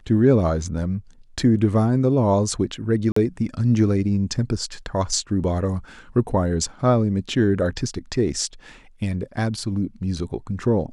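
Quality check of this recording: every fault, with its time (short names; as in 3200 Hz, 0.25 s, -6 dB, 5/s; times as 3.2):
3.12–3.16 gap 44 ms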